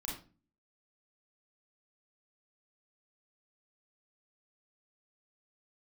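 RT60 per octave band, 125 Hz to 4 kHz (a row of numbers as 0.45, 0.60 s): 0.60, 0.60, 0.40, 0.30, 0.30, 0.30 s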